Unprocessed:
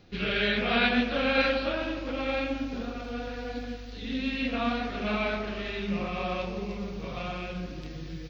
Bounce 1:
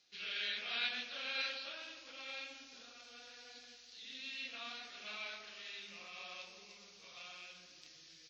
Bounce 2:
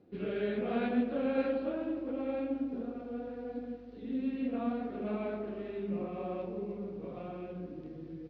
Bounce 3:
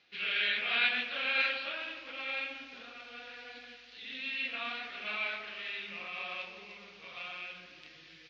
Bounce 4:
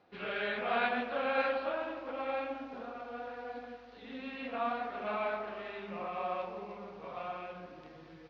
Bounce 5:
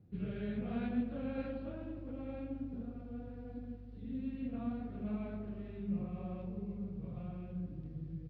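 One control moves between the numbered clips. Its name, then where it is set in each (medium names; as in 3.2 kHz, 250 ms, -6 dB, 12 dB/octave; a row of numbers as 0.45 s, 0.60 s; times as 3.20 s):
band-pass filter, frequency: 6.6 kHz, 340 Hz, 2.6 kHz, 890 Hz, 120 Hz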